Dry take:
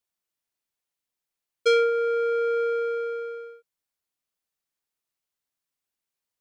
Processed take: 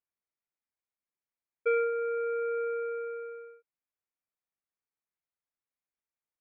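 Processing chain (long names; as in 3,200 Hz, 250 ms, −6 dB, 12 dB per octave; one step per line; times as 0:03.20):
elliptic low-pass filter 2,400 Hz, stop band 40 dB
level −6.5 dB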